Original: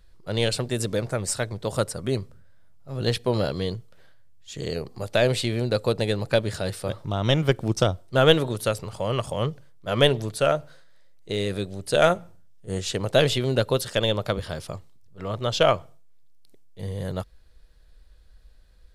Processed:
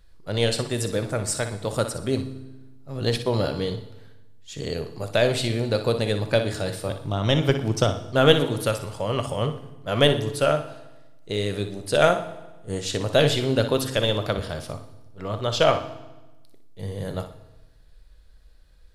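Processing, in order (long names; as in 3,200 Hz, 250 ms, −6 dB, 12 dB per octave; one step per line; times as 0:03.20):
flutter between parallel walls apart 10.3 metres, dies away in 0.35 s
on a send at −10 dB: convolution reverb RT60 1.1 s, pre-delay 4 ms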